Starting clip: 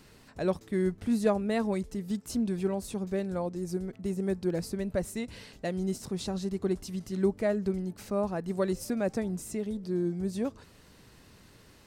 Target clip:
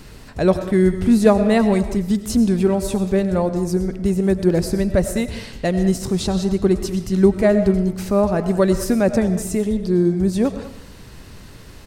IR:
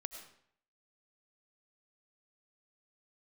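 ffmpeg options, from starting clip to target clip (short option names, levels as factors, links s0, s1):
-filter_complex "[0:a]lowshelf=f=78:g=11.5,asplit=2[s0][s1];[s1]adelay=200,highpass=300,lowpass=3400,asoftclip=type=hard:threshold=0.0708,volume=0.178[s2];[s0][s2]amix=inputs=2:normalize=0,asplit=2[s3][s4];[1:a]atrim=start_sample=2205[s5];[s4][s5]afir=irnorm=-1:irlink=0,volume=2[s6];[s3][s6]amix=inputs=2:normalize=0,volume=1.68"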